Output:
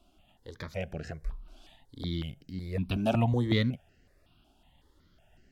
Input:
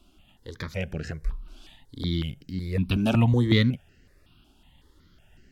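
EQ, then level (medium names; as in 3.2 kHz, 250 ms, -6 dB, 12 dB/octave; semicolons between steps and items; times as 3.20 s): peaking EQ 680 Hz +9.5 dB 0.62 oct; -6.5 dB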